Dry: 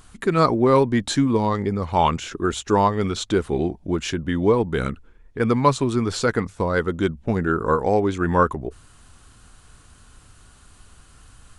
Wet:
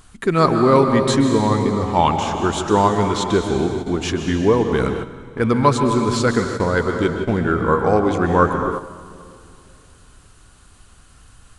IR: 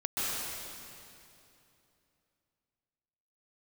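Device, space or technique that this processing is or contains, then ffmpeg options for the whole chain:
keyed gated reverb: -filter_complex "[0:a]asplit=3[s0][s1][s2];[1:a]atrim=start_sample=2205[s3];[s1][s3]afir=irnorm=-1:irlink=0[s4];[s2]apad=whole_len=510949[s5];[s4][s5]sidechaingate=range=0.355:threshold=0.0141:ratio=16:detection=peak,volume=0.316[s6];[s0][s6]amix=inputs=2:normalize=0"

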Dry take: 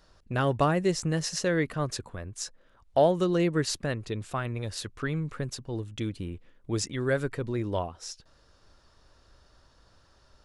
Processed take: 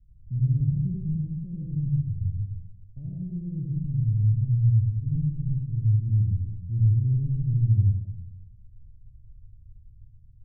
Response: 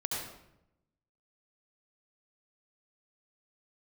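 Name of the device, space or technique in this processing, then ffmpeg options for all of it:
club heard from the street: -filter_complex "[0:a]alimiter=limit=0.126:level=0:latency=1:release=406,lowpass=f=130:w=0.5412,lowpass=f=130:w=1.3066[s0];[1:a]atrim=start_sample=2205[s1];[s0][s1]afir=irnorm=-1:irlink=0,volume=2.66"

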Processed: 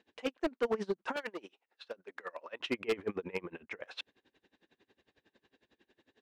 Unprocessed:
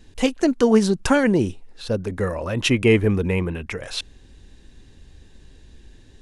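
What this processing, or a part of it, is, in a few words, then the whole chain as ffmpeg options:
helicopter radio: -filter_complex "[0:a]highpass=390,lowpass=2800,aeval=exprs='val(0)*pow(10,-26*(0.5-0.5*cos(2*PI*11*n/s))/20)':c=same,asoftclip=type=hard:threshold=0.0841,asettb=1/sr,asplit=3[s0][s1][s2];[s0]atrim=end=1.164[s3];[s1]atrim=start=1.16:end=2.6,asetpts=PTS-STARTPTS,afade=t=in:d=0.004:c=qsin,afade=t=out:st=1.436:d=0.004:c=qsin,highpass=f=1200:p=1[s4];[s2]atrim=start=2.596[s5];[s3][s4]acrossfade=d=0.004:c1=hsin:c2=qsin[s6];[s6][s5]acrossfade=d=0.004:c1=qsin:c2=hsin,volume=0.631"

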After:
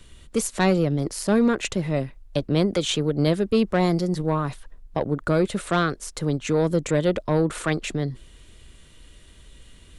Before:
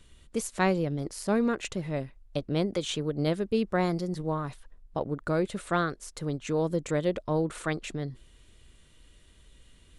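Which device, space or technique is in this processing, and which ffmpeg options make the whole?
one-band saturation: -filter_complex "[0:a]acrossover=split=230|2400[s0][s1][s2];[s1]asoftclip=type=tanh:threshold=0.0708[s3];[s0][s3][s2]amix=inputs=3:normalize=0,volume=2.51"

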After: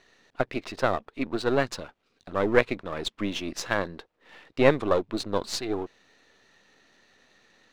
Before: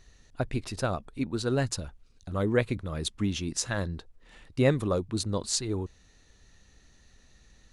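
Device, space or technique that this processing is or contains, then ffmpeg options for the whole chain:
crystal radio: -af "highpass=330,lowpass=3400,aeval=exprs='if(lt(val(0),0),0.447*val(0),val(0))':c=same,volume=2.66"

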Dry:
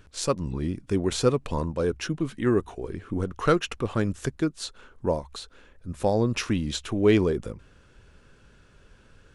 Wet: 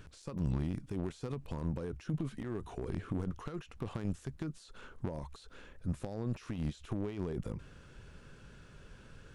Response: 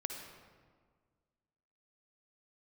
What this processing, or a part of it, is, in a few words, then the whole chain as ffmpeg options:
de-esser from a sidechain: -filter_complex "[0:a]equalizer=f=150:t=o:w=0.77:g=5,asplit=2[s0][s1];[s1]highpass=f=4400:p=1,apad=whole_len=412014[s2];[s0][s2]sidechaincompress=threshold=0.00178:ratio=16:attack=0.56:release=24"

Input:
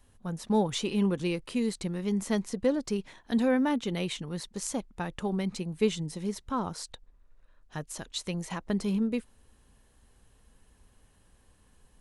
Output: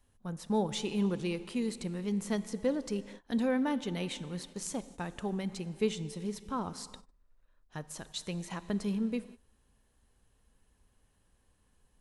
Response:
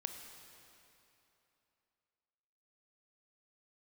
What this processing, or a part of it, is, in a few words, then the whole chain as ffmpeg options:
keyed gated reverb: -filter_complex "[0:a]asplit=3[s0][s1][s2];[1:a]atrim=start_sample=2205[s3];[s1][s3]afir=irnorm=-1:irlink=0[s4];[s2]apad=whole_len=529620[s5];[s4][s5]sidechaingate=range=0.0224:threshold=0.00398:ratio=16:detection=peak,volume=0.75[s6];[s0][s6]amix=inputs=2:normalize=0,volume=0.398"

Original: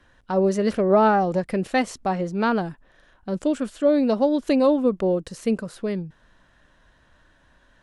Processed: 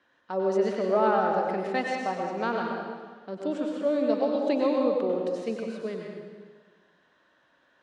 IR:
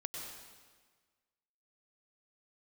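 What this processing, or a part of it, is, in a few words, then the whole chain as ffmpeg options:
supermarket ceiling speaker: -filter_complex "[0:a]highpass=270,lowpass=5200[s0];[1:a]atrim=start_sample=2205[s1];[s0][s1]afir=irnorm=-1:irlink=0,volume=0.668"

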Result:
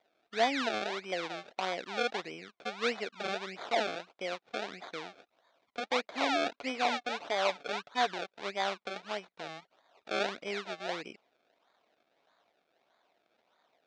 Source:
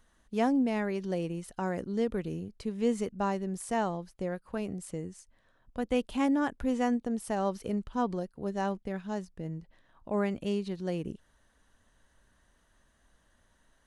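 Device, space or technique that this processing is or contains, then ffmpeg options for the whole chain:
circuit-bent sampling toy: -filter_complex "[0:a]acrusher=samples=31:mix=1:aa=0.000001:lfo=1:lforange=31:lforate=1.6,highpass=440,equalizer=f=690:t=q:w=4:g=7,equalizer=f=1400:t=q:w=4:g=3,equalizer=f=2300:t=q:w=4:g=6,equalizer=f=3700:t=q:w=4:g=7,lowpass=f=5900:w=0.5412,lowpass=f=5900:w=1.3066,asettb=1/sr,asplit=3[s0][s1][s2];[s0]atrim=end=6.564[s3];[s1]atrim=start=6.56:end=8.14,asetpts=PTS-STARTPTS,afade=t=in:d=0.004:c=qsin,afade=t=out:st=1.576:d=0.004:c=qsin,aecho=1:1:6.9:0.41,atrim=end_sample=69678[s4];[s2]atrim=start=8.136[s5];[s3][s4]acrossfade=d=0.004:c1=hsin:c2=qsin[s6];[s6][s5]acrossfade=d=0.004:c1=qsin:c2=hsin,volume=0.841"

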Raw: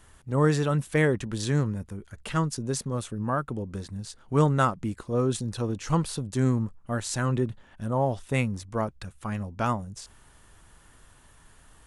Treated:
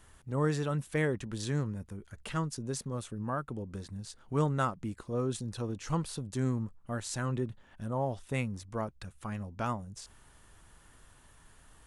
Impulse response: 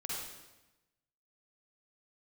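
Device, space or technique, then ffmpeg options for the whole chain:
parallel compression: -filter_complex "[0:a]asplit=2[s0][s1];[s1]acompressor=threshold=0.0112:ratio=6,volume=0.708[s2];[s0][s2]amix=inputs=2:normalize=0,volume=0.398"

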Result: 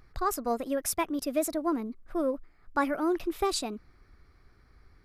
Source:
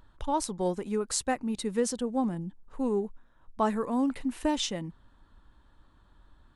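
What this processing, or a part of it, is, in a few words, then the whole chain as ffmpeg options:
nightcore: -af "asetrate=57330,aresample=44100"

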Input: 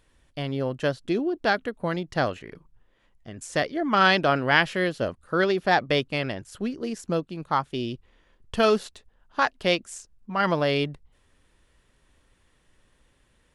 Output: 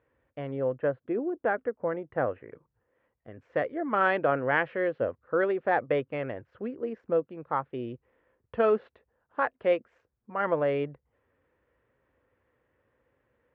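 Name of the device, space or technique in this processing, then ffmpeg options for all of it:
bass cabinet: -filter_complex "[0:a]highpass=f=65:w=0.5412,highpass=f=65:w=1.3066,equalizer=f=73:t=q:w=4:g=-7,equalizer=f=180:t=q:w=4:g=-9,equalizer=f=500:t=q:w=4:g=9,lowpass=f=2100:w=0.5412,lowpass=f=2100:w=1.3066,asettb=1/sr,asplit=3[s0][s1][s2];[s0]atrim=end=0.784[s3];[s1]atrim=start=0.78:end=2.5,asetpts=PTS-STARTPTS,afade=t=in:d=0.004:c=qsin,afade=t=out:st=1.716:d=0.004:c=qsin,lowpass=2200[s4];[s2]atrim=start=2.496[s5];[s3][s4]acrossfade=d=0.004:c1=hsin:c2=qsin[s6];[s6][s5]acrossfade=d=0.004:c1=qsin:c2=hsin,volume=0.531"

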